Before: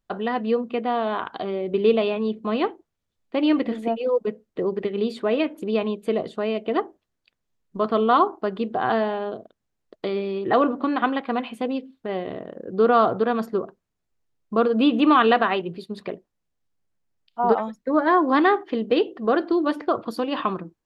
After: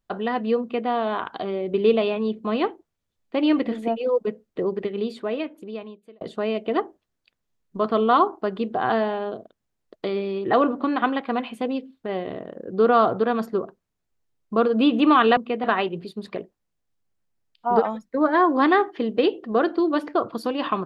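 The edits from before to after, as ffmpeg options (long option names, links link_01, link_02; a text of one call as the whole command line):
ffmpeg -i in.wav -filter_complex "[0:a]asplit=4[link_01][link_02][link_03][link_04];[link_01]atrim=end=6.21,asetpts=PTS-STARTPTS,afade=type=out:start_time=4.63:duration=1.58[link_05];[link_02]atrim=start=6.21:end=15.372,asetpts=PTS-STARTPTS,afade=type=in:duration=0.004:curve=hsin[link_06];[link_03]atrim=start=0.608:end=0.882[link_07];[link_04]atrim=start=15.368[link_08];[link_05][link_06]concat=n=2:v=0:a=1[link_09];[link_09][link_07]acrossfade=duration=0.004:curve1=hsin:curve2=hsin[link_10];[link_10][link_08]acrossfade=duration=0.004:curve1=hsin:curve2=hsin" out.wav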